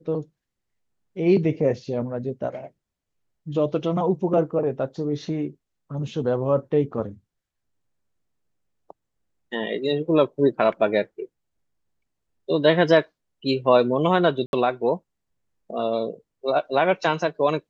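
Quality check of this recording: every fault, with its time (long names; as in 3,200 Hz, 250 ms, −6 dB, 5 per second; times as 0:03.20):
0:14.46–0:14.53: drop-out 71 ms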